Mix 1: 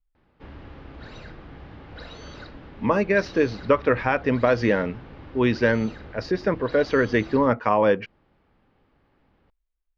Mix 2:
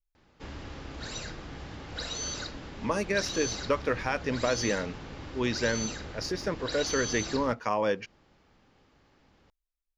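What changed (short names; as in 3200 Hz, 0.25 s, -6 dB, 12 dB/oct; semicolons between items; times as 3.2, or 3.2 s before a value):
speech -9.5 dB; master: remove air absorption 330 m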